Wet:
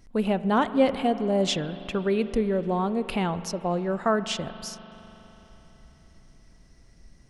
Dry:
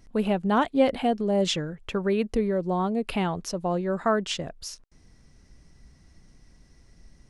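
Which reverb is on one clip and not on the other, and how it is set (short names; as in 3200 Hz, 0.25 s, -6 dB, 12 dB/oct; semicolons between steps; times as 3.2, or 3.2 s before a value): spring tank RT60 4 s, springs 41 ms, chirp 45 ms, DRR 12.5 dB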